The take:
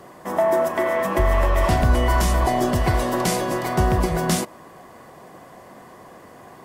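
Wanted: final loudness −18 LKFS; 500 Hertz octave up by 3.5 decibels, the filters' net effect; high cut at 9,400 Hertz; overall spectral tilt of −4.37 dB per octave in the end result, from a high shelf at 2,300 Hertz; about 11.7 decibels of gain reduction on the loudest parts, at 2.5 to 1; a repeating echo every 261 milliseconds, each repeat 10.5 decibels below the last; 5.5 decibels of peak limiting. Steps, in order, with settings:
low-pass filter 9,400 Hz
parametric band 500 Hz +5.5 dB
high-shelf EQ 2,300 Hz −4 dB
downward compressor 2.5 to 1, threshold −31 dBFS
brickwall limiter −22 dBFS
repeating echo 261 ms, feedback 30%, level −10.5 dB
level +14.5 dB

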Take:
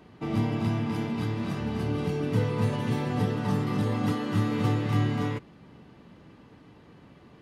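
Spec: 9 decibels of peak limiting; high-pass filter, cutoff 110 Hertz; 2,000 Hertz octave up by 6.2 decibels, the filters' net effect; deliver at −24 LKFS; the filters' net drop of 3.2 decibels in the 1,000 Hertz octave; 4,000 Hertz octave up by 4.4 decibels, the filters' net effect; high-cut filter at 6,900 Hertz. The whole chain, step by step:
high-pass filter 110 Hz
low-pass filter 6,900 Hz
parametric band 1,000 Hz −6.5 dB
parametric band 2,000 Hz +8.5 dB
parametric band 4,000 Hz +3 dB
level +8.5 dB
brickwall limiter −15 dBFS

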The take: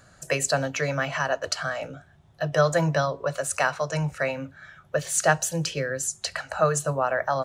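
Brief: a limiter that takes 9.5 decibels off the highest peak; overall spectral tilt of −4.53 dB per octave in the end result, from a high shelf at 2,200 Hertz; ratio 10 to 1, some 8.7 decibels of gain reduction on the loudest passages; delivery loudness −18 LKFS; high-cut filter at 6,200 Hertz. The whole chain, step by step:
low-pass filter 6,200 Hz
high-shelf EQ 2,200 Hz −4.5 dB
downward compressor 10 to 1, threshold −24 dBFS
level +16.5 dB
brickwall limiter −7.5 dBFS

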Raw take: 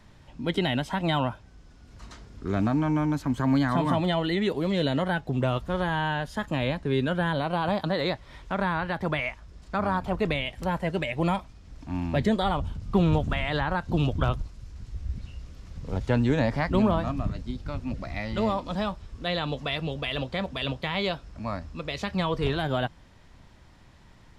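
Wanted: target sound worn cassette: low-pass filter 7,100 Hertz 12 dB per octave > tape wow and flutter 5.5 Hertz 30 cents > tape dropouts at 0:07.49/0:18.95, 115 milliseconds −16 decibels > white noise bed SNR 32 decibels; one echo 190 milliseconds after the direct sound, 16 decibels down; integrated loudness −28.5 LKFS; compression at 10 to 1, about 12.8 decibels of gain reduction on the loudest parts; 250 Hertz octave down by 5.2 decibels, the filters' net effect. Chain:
parametric band 250 Hz −7.5 dB
downward compressor 10 to 1, threshold −34 dBFS
low-pass filter 7,100 Hz 12 dB per octave
single-tap delay 190 ms −16 dB
tape wow and flutter 5.5 Hz 30 cents
tape dropouts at 0:07.49/0:18.95, 115 ms −16 dB
white noise bed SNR 32 dB
level +11 dB

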